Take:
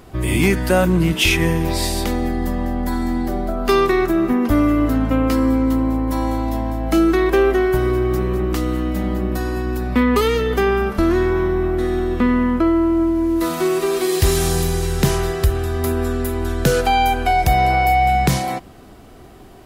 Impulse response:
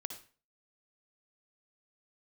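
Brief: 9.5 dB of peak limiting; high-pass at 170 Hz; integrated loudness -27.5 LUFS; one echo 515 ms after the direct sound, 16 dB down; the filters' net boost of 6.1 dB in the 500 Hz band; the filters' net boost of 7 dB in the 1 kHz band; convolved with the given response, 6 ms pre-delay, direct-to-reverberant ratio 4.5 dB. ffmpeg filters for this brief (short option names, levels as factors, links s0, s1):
-filter_complex "[0:a]highpass=170,equalizer=f=500:t=o:g=7.5,equalizer=f=1000:t=o:g=6.5,alimiter=limit=0.355:level=0:latency=1,aecho=1:1:515:0.158,asplit=2[s0][s1];[1:a]atrim=start_sample=2205,adelay=6[s2];[s1][s2]afir=irnorm=-1:irlink=0,volume=0.708[s3];[s0][s3]amix=inputs=2:normalize=0,volume=0.251"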